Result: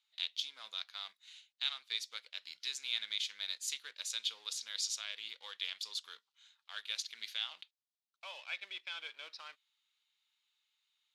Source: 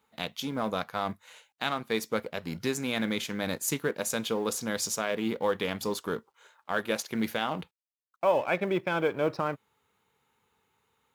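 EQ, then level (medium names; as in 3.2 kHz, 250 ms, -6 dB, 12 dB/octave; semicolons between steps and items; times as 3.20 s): ladder band-pass 4.5 kHz, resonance 45%; treble shelf 3.5 kHz -7.5 dB; +12.5 dB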